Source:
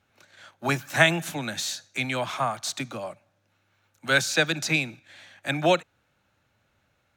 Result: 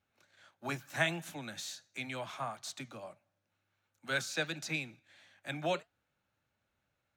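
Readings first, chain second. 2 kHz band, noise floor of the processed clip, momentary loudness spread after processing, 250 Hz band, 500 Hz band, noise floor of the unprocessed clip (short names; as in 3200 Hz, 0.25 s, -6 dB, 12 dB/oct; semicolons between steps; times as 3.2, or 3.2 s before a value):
-12.5 dB, -83 dBFS, 14 LU, -12.5 dB, -12.5 dB, -71 dBFS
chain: flange 1.5 Hz, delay 3.2 ms, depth 4.4 ms, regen -79%; gain -8 dB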